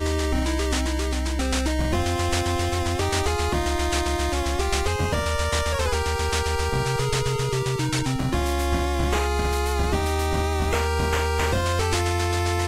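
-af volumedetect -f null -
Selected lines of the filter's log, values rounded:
mean_volume: -23.1 dB
max_volume: -9.9 dB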